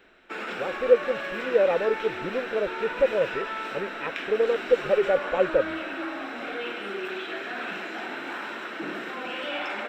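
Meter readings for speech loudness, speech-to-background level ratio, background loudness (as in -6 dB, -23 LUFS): -26.0 LUFS, 7.0 dB, -33.0 LUFS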